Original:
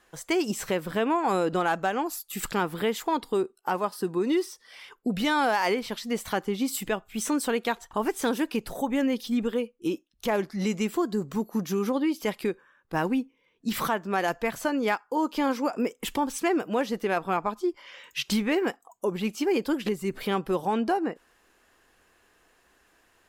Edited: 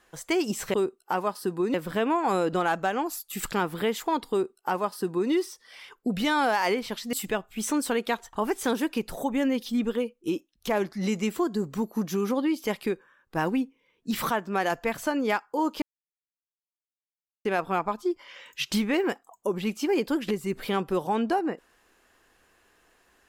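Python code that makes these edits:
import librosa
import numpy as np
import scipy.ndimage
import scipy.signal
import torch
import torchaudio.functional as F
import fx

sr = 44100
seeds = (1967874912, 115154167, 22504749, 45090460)

y = fx.edit(x, sr, fx.duplicate(start_s=3.31, length_s=1.0, to_s=0.74),
    fx.cut(start_s=6.13, length_s=0.58),
    fx.silence(start_s=15.4, length_s=1.63), tone=tone)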